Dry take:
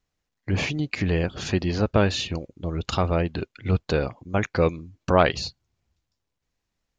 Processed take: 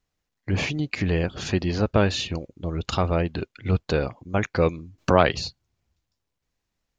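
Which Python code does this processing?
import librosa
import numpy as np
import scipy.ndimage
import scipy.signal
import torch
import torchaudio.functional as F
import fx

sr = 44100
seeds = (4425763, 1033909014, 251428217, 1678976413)

y = fx.band_squash(x, sr, depth_pct=40, at=(4.98, 5.41))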